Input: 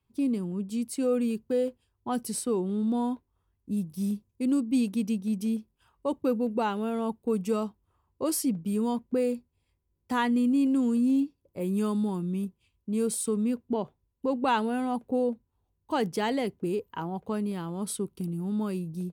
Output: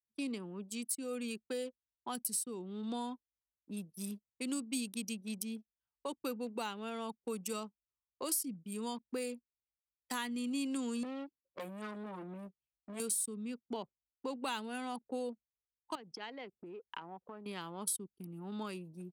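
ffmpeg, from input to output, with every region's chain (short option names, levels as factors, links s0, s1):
-filter_complex "[0:a]asettb=1/sr,asplit=3[s0][s1][s2];[s0]atrim=end=11.034[s3];[s1]atrim=start=11.03:end=13,asetpts=PTS-STARTPTS,afade=t=in:d=0.004:c=qsin,afade=t=out:st=1.966:d=0.004:c=qsin,asplit=2[s4][s5];[s5]adelay=15,volume=0.668[s6];[s4][s6]amix=inputs=2:normalize=0,atrim=end_sample=86877,acompressor=threshold=0.0501:ratio=10:attack=3.2:release=140:knee=1:detection=peak,aeval=exprs='clip(val(0),-1,0.0133)':c=same[s7];[s2]atrim=start=12.996[s8];[s3][s7]acrossfade=d=0.004:c1=hsin:c2=qsin[s9];[s9][s8]acrossfade=d=0.004:c1=qsin:c2=hsin,asettb=1/sr,asplit=3[s10][s11][s12];[s10]atrim=end=15.954[s13];[s11]atrim=start=15.95:end=17.46,asetpts=PTS-STARTPTS,afade=t=in:d=0.004:c=qsin,afade=t=out:st=1.506:d=0.004:c=qsin,acompressor=threshold=0.0178:ratio=10:attack=3.2:release=140:knee=1:detection=peak,lowpass=5300[s14];[s12]atrim=start=17.456[s15];[s13][s14]acrossfade=d=0.004:c1=hsin:c2=qsin[s16];[s16][s15]acrossfade=d=0.004:c1=qsin:c2=hsin,anlmdn=0.631,aderivative,acrossover=split=290[s17][s18];[s18]acompressor=threshold=0.00112:ratio=3[s19];[s17][s19]amix=inputs=2:normalize=0,volume=7.5"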